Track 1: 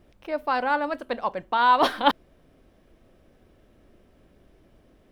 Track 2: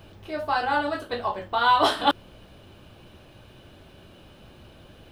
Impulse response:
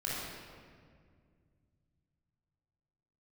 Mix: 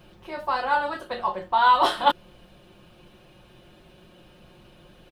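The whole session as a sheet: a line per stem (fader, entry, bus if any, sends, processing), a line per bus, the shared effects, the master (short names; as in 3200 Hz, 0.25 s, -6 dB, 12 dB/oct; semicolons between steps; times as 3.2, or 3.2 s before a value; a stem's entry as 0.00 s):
-9.5 dB, 0.00 s, no send, bell 1000 Hz +11.5 dB 0.77 oct
-4.0 dB, 0.00 s, polarity flipped, no send, comb 5.6 ms, depth 67%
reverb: off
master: dry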